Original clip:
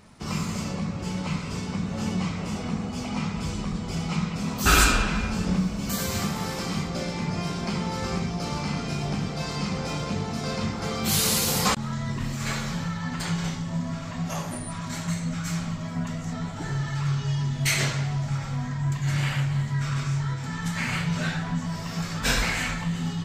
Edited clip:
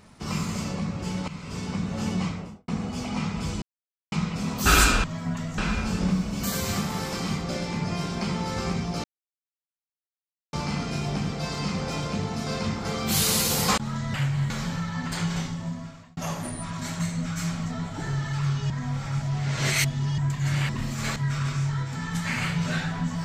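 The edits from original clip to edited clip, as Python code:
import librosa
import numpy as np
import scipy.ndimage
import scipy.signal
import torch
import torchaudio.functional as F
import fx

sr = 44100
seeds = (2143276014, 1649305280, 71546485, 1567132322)

y = fx.studio_fade_out(x, sr, start_s=2.22, length_s=0.46)
y = fx.edit(y, sr, fx.fade_in_from(start_s=1.28, length_s=0.39, floor_db=-13.0),
    fx.silence(start_s=3.62, length_s=0.5),
    fx.insert_silence(at_s=8.5, length_s=1.49),
    fx.swap(start_s=12.11, length_s=0.47, other_s=19.31, other_length_s=0.36),
    fx.fade_out_span(start_s=13.54, length_s=0.71),
    fx.move(start_s=15.74, length_s=0.54, to_s=5.04),
    fx.reverse_span(start_s=17.32, length_s=1.48), tone=tone)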